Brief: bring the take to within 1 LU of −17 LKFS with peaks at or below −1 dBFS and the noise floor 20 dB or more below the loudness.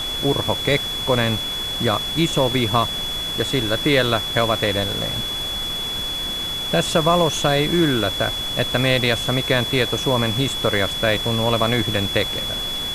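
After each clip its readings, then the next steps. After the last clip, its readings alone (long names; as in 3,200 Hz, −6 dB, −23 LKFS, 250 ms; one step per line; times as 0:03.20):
interfering tone 3,400 Hz; level of the tone −24 dBFS; background noise floor −26 dBFS; target noise floor −40 dBFS; integrated loudness −19.5 LKFS; sample peak −3.5 dBFS; target loudness −17.0 LKFS
→ notch filter 3,400 Hz, Q 30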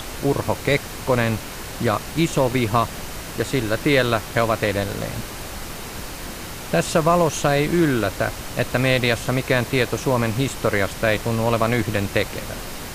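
interfering tone none found; background noise floor −34 dBFS; target noise floor −42 dBFS
→ noise reduction from a noise print 8 dB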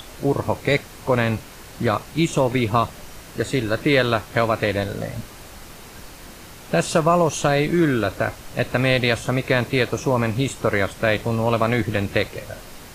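background noise floor −41 dBFS; target noise floor −42 dBFS
→ noise reduction from a noise print 6 dB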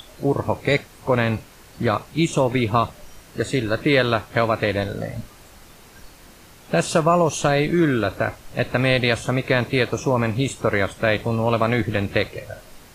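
background noise floor −47 dBFS; integrated loudness −21.5 LKFS; sample peak −4.0 dBFS; target loudness −17.0 LKFS
→ level +4.5 dB
brickwall limiter −1 dBFS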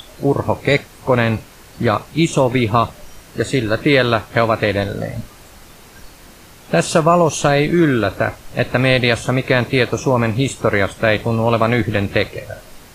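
integrated loudness −17.0 LKFS; sample peak −1.0 dBFS; background noise floor −42 dBFS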